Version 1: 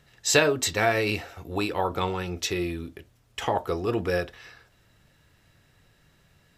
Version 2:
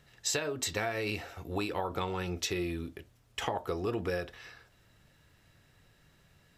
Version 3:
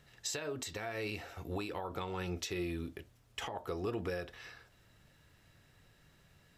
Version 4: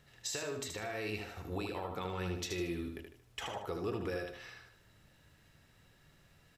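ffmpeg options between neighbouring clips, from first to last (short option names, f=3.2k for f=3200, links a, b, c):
-af "acompressor=threshold=-26dB:ratio=16,volume=-2.5dB"
-af "alimiter=level_in=2.5dB:limit=-24dB:level=0:latency=1:release=271,volume=-2.5dB,volume=-1dB"
-af "aecho=1:1:76|152|228|304:0.562|0.202|0.0729|0.0262,volume=-1dB"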